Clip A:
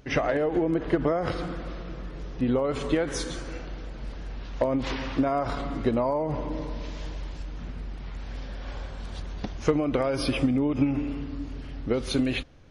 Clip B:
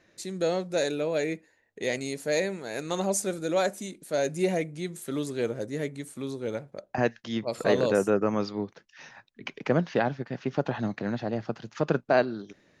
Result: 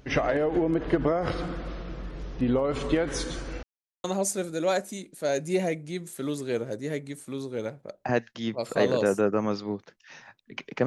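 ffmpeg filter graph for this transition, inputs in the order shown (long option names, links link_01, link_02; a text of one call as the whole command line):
ffmpeg -i cue0.wav -i cue1.wav -filter_complex "[0:a]apad=whole_dur=10.86,atrim=end=10.86,asplit=2[link_01][link_02];[link_01]atrim=end=3.63,asetpts=PTS-STARTPTS,afade=type=out:start_time=3.626:duration=0.004:curve=hsin[link_03];[link_02]atrim=start=3.63:end=4.04,asetpts=PTS-STARTPTS,volume=0[link_04];[1:a]atrim=start=2.93:end=9.75,asetpts=PTS-STARTPTS,afade=type=in:duration=0.004:curve=hsin[link_05];[link_03][link_04][link_05]concat=n=3:v=0:a=1" out.wav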